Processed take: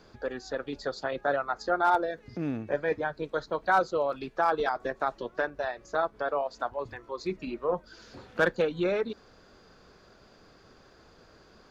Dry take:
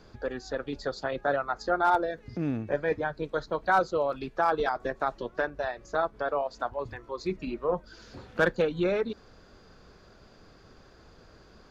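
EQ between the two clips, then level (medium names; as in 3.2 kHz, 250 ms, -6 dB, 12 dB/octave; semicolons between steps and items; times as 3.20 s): bass shelf 140 Hz -7.5 dB; 0.0 dB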